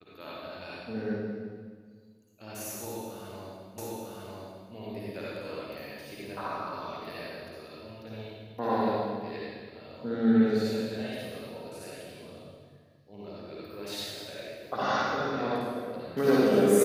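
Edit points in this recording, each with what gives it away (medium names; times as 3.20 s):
3.78 s: repeat of the last 0.95 s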